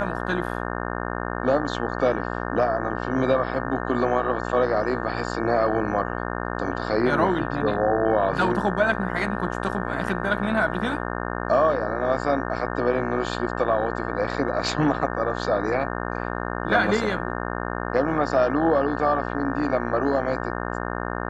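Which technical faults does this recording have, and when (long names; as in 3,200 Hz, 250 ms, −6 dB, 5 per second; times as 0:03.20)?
mains buzz 60 Hz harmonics 30 −29 dBFS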